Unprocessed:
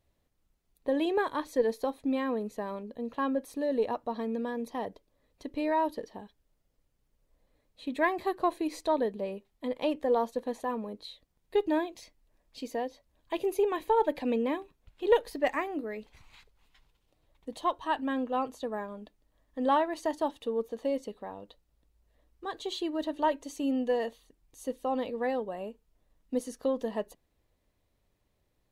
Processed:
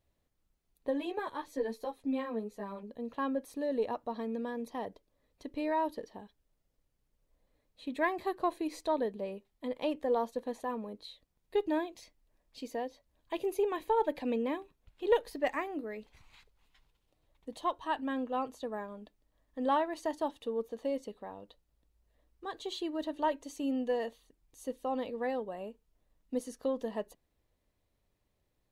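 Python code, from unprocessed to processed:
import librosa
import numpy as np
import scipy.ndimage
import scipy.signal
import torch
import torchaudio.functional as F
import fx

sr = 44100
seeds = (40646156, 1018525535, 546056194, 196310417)

y = fx.ensemble(x, sr, at=(0.9, 2.82), fade=0.02)
y = F.gain(torch.from_numpy(y), -3.5).numpy()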